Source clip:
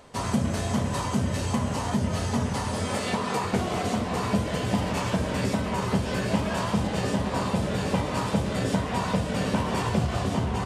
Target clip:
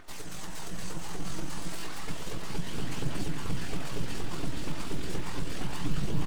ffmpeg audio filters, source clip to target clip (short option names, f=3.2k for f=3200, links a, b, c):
-filter_complex "[0:a]tiltshelf=f=1.1k:g=-5.5,aecho=1:1:3.3:0.96,asubboost=boost=11:cutoff=150,acrossover=split=2200[a][b];[a]acompressor=mode=upward:threshold=-31dB:ratio=2.5[c];[c][b]amix=inputs=2:normalize=0,aeval=exprs='abs(val(0))':c=same,acrusher=bits=8:mode=log:mix=0:aa=0.000001,flanger=delay=9.5:depth=8.9:regen=32:speed=1.1:shape=triangular,atempo=1.7,aphaser=in_gain=1:out_gain=1:delay=3.5:decay=0.25:speed=0.32:type=triangular,asplit=2[d][e];[e]aecho=0:1:434:0.335[f];[d][f]amix=inputs=2:normalize=0,volume=-8.5dB"